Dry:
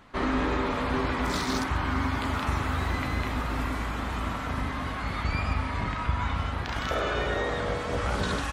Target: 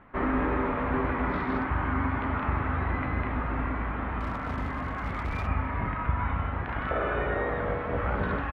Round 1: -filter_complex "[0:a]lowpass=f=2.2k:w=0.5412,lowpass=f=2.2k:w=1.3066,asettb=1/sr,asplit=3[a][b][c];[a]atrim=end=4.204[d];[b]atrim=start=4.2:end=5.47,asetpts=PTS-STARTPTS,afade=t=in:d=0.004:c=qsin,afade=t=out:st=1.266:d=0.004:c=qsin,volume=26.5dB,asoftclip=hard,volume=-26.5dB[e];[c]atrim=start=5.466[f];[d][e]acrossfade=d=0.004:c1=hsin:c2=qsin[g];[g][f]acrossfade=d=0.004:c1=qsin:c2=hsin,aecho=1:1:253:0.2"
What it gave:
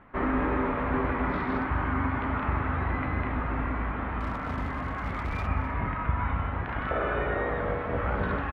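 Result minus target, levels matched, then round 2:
echo-to-direct +9.5 dB
-filter_complex "[0:a]lowpass=f=2.2k:w=0.5412,lowpass=f=2.2k:w=1.3066,asettb=1/sr,asplit=3[a][b][c];[a]atrim=end=4.204[d];[b]atrim=start=4.2:end=5.47,asetpts=PTS-STARTPTS,afade=t=in:d=0.004:c=qsin,afade=t=out:st=1.266:d=0.004:c=qsin,volume=26.5dB,asoftclip=hard,volume=-26.5dB[e];[c]atrim=start=5.466[f];[d][e]acrossfade=d=0.004:c1=hsin:c2=qsin[g];[g][f]acrossfade=d=0.004:c1=qsin:c2=hsin,aecho=1:1:253:0.0668"

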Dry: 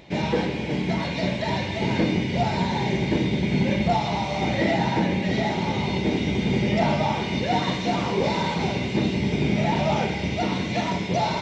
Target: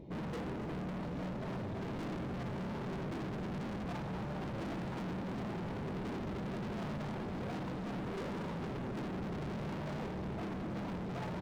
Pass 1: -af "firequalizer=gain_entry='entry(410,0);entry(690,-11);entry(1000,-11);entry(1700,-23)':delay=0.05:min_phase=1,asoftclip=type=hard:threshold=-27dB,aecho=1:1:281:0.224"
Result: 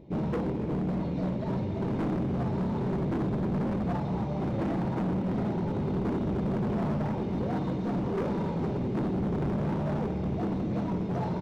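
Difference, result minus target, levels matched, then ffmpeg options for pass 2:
hard clip: distortion -4 dB
-af "firequalizer=gain_entry='entry(410,0);entry(690,-11);entry(1000,-11);entry(1700,-23)':delay=0.05:min_phase=1,asoftclip=type=hard:threshold=-39dB,aecho=1:1:281:0.224"

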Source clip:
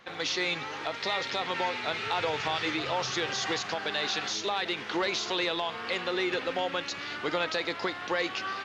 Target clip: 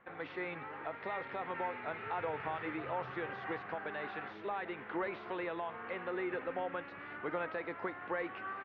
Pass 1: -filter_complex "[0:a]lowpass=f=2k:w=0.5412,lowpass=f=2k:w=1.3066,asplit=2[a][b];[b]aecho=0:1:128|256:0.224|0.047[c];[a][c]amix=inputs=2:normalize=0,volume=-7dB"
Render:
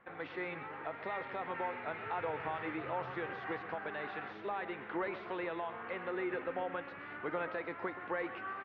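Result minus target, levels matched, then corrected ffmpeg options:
echo-to-direct +12 dB
-filter_complex "[0:a]lowpass=f=2k:w=0.5412,lowpass=f=2k:w=1.3066,asplit=2[a][b];[b]aecho=0:1:128|256:0.0562|0.0118[c];[a][c]amix=inputs=2:normalize=0,volume=-7dB"

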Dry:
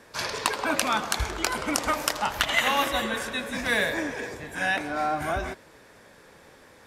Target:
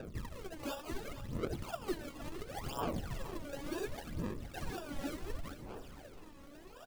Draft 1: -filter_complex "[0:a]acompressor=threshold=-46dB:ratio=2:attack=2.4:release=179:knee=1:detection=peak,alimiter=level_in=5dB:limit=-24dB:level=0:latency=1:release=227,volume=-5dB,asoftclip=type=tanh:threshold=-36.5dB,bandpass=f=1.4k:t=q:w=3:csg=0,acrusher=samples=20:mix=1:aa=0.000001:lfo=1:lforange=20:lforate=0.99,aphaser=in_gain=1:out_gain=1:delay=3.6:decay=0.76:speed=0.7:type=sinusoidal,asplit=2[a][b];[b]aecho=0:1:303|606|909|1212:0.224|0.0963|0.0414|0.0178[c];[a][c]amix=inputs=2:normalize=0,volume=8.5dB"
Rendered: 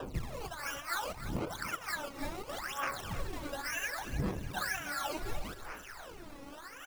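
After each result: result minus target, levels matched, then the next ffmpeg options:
decimation with a swept rate: distortion -15 dB; echo 0.161 s early; compressor: peak gain reduction -5.5 dB
-filter_complex "[0:a]acompressor=threshold=-46dB:ratio=2:attack=2.4:release=179:knee=1:detection=peak,alimiter=level_in=5dB:limit=-24dB:level=0:latency=1:release=227,volume=-5dB,asoftclip=type=tanh:threshold=-36.5dB,bandpass=f=1.4k:t=q:w=3:csg=0,acrusher=samples=41:mix=1:aa=0.000001:lfo=1:lforange=41:lforate=0.99,aphaser=in_gain=1:out_gain=1:delay=3.6:decay=0.76:speed=0.7:type=sinusoidal,asplit=2[a][b];[b]aecho=0:1:303|606|909|1212:0.224|0.0963|0.0414|0.0178[c];[a][c]amix=inputs=2:normalize=0,volume=8.5dB"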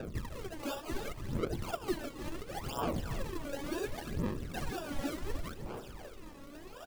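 echo 0.161 s early; compressor: peak gain reduction -5.5 dB
-filter_complex "[0:a]acompressor=threshold=-46dB:ratio=2:attack=2.4:release=179:knee=1:detection=peak,alimiter=level_in=5dB:limit=-24dB:level=0:latency=1:release=227,volume=-5dB,asoftclip=type=tanh:threshold=-36.5dB,bandpass=f=1.4k:t=q:w=3:csg=0,acrusher=samples=41:mix=1:aa=0.000001:lfo=1:lforange=41:lforate=0.99,aphaser=in_gain=1:out_gain=1:delay=3.6:decay=0.76:speed=0.7:type=sinusoidal,asplit=2[a][b];[b]aecho=0:1:464|928|1392|1856:0.224|0.0963|0.0414|0.0178[c];[a][c]amix=inputs=2:normalize=0,volume=8.5dB"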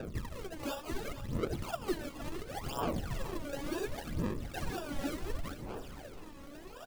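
compressor: peak gain reduction -5.5 dB
-filter_complex "[0:a]acompressor=threshold=-57dB:ratio=2:attack=2.4:release=179:knee=1:detection=peak,alimiter=level_in=5dB:limit=-24dB:level=0:latency=1:release=227,volume=-5dB,asoftclip=type=tanh:threshold=-36.5dB,bandpass=f=1.4k:t=q:w=3:csg=0,acrusher=samples=41:mix=1:aa=0.000001:lfo=1:lforange=41:lforate=0.99,aphaser=in_gain=1:out_gain=1:delay=3.6:decay=0.76:speed=0.7:type=sinusoidal,asplit=2[a][b];[b]aecho=0:1:464|928|1392|1856:0.224|0.0963|0.0414|0.0178[c];[a][c]amix=inputs=2:normalize=0,volume=8.5dB"

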